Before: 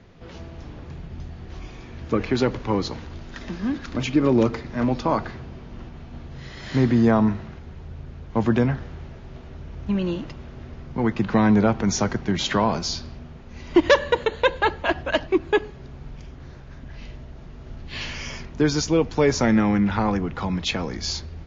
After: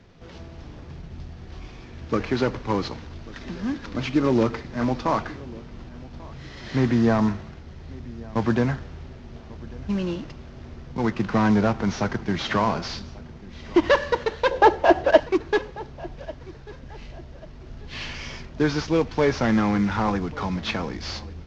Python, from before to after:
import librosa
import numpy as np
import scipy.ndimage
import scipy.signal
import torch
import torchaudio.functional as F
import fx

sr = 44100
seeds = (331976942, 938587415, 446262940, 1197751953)

y = fx.cvsd(x, sr, bps=32000)
y = fx.band_shelf(y, sr, hz=520.0, db=10.5, octaves=1.7, at=(14.51, 15.2))
y = fx.echo_feedback(y, sr, ms=1142, feedback_pct=34, wet_db=-20)
y = fx.dynamic_eq(y, sr, hz=1300.0, q=0.81, threshold_db=-34.0, ratio=4.0, max_db=4)
y = y * librosa.db_to_amplitude(-2.0)